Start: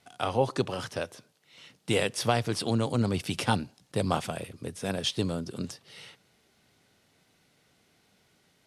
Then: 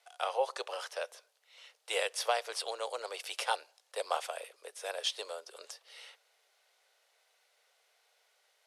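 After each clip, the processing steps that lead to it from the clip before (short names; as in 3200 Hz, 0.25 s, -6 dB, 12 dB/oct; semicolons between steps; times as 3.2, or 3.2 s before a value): steep high-pass 480 Hz 48 dB/oct; gain -3.5 dB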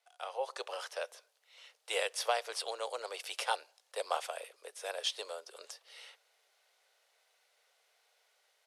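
AGC gain up to 8 dB; gain -9 dB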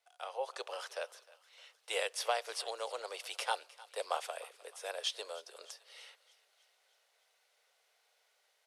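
thinning echo 0.307 s, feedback 57%, high-pass 670 Hz, level -19 dB; gain -1.5 dB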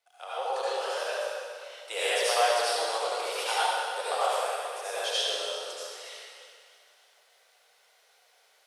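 reverb RT60 2.2 s, pre-delay 63 ms, DRR -10 dB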